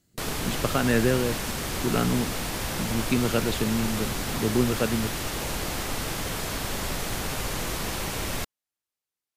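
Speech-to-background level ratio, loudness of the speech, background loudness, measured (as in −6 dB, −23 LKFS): 2.5 dB, −27.5 LKFS, −30.0 LKFS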